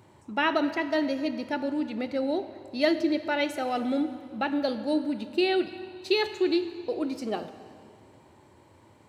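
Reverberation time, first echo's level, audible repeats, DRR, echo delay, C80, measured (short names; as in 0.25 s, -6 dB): 2.2 s, none, none, 10.5 dB, none, 12.5 dB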